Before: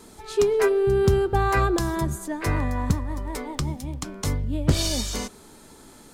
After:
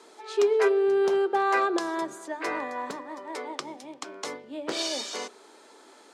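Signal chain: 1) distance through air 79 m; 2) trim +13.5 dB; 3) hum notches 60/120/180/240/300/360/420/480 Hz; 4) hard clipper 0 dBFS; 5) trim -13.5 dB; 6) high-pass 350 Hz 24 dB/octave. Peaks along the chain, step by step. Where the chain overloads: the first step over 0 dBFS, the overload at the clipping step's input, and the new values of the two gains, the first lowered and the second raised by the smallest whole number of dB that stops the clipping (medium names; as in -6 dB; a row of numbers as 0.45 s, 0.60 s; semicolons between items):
-8.5 dBFS, +5.0 dBFS, +5.0 dBFS, 0.0 dBFS, -13.5 dBFS, -12.5 dBFS; step 2, 5.0 dB; step 2 +8.5 dB, step 5 -8.5 dB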